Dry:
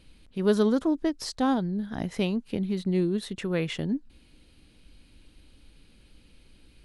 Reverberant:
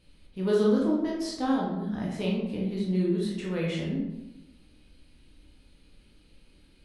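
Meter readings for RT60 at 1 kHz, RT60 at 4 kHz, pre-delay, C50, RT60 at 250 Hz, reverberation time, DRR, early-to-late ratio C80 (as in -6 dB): 0.90 s, 0.60 s, 14 ms, 1.5 dB, 1.1 s, 0.95 s, -4.5 dB, 5.0 dB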